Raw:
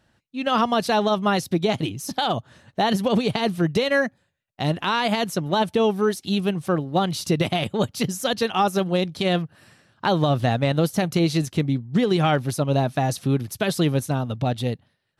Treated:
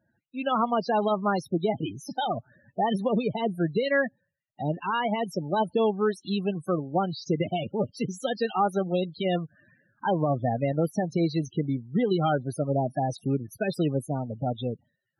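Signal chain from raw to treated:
low-shelf EQ 96 Hz −11.5 dB
spectral peaks only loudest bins 16
level −3 dB

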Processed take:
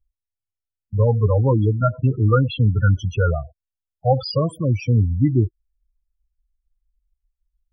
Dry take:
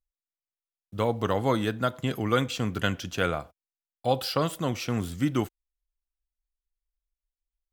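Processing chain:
low shelf with overshoot 140 Hz +8 dB, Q 1.5
spectral peaks only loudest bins 8
level +8 dB

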